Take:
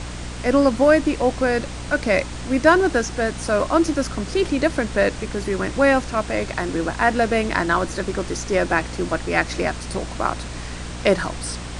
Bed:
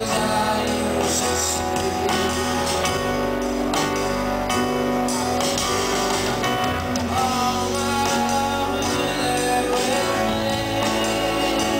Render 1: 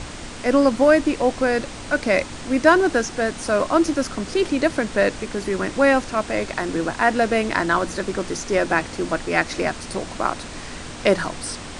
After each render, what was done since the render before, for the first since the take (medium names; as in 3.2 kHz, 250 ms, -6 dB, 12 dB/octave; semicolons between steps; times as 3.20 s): de-hum 60 Hz, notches 3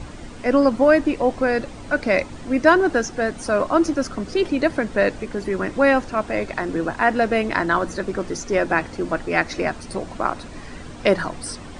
noise reduction 10 dB, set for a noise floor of -35 dBFS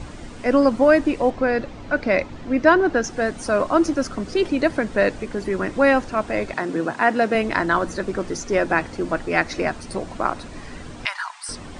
1.30–3.04 s: distance through air 100 m; 6.54–7.35 s: high-pass 130 Hz 24 dB/octave; 11.05–11.49 s: elliptic high-pass 890 Hz, stop band 50 dB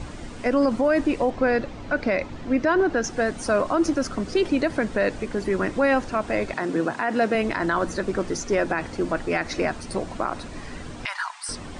peak limiter -12.5 dBFS, peak gain reduction 10 dB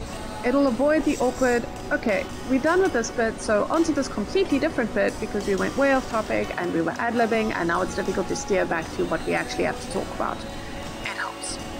add bed -15.5 dB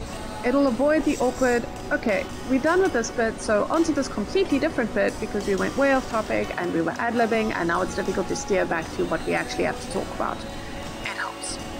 no audible change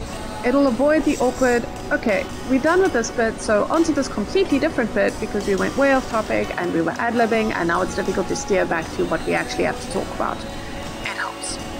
trim +3.5 dB